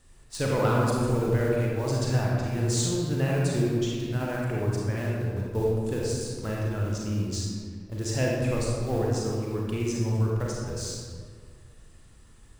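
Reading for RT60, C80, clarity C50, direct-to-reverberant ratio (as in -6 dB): 1.9 s, 0.5 dB, -2.0 dB, -3.5 dB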